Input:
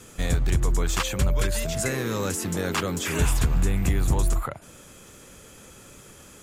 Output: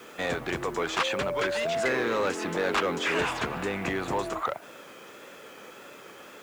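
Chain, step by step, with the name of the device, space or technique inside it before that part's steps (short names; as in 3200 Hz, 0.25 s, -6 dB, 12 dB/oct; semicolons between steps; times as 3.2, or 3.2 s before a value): tape answering machine (BPF 390–2900 Hz; soft clip -25.5 dBFS, distortion -14 dB; wow and flutter; white noise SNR 30 dB); gain +6.5 dB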